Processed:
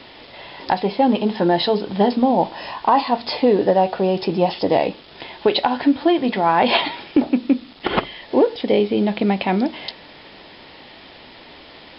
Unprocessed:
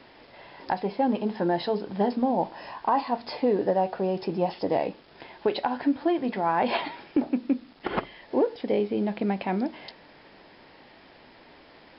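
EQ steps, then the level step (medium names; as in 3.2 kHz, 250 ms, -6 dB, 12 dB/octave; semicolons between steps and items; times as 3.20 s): peaking EQ 70 Hz +3.5 dB; peaking EQ 3.5 kHz +8 dB 0.92 oct; band-stop 1.6 kHz, Q 20; +8.0 dB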